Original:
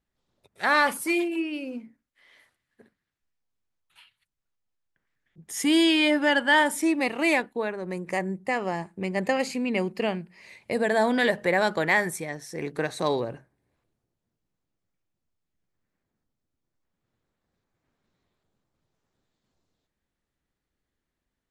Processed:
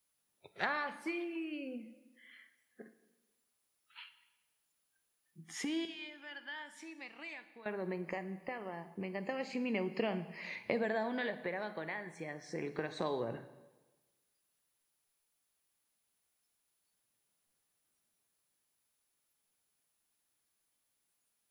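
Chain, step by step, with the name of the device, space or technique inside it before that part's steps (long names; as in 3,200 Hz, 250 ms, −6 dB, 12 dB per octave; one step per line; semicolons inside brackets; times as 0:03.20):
medium wave at night (band-pass filter 110–4,000 Hz; downward compressor 8 to 1, threshold −36 dBFS, peak gain reduction 19.5 dB; amplitude tremolo 0.29 Hz, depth 62%; steady tone 10,000 Hz −68 dBFS; white noise bed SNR 23 dB)
noise reduction from a noise print of the clip's start 19 dB
0:05.85–0:07.66: guitar amp tone stack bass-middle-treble 5-5-5
dense smooth reverb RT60 1.2 s, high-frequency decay 0.9×, DRR 10.5 dB
level +5 dB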